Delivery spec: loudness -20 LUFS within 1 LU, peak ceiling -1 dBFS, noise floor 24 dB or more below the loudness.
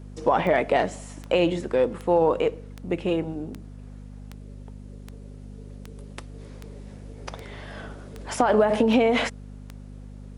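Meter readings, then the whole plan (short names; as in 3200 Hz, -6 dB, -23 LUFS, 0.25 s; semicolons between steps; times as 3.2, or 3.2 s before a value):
clicks 13; hum 50 Hz; harmonics up to 250 Hz; hum level -39 dBFS; loudness -23.5 LUFS; peak -8.5 dBFS; loudness target -20.0 LUFS
-> de-click; de-hum 50 Hz, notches 5; gain +3.5 dB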